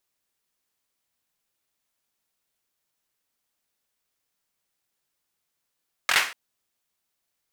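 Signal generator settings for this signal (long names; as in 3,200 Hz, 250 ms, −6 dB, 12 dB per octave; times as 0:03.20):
synth clap length 0.24 s, apart 23 ms, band 1,800 Hz, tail 0.38 s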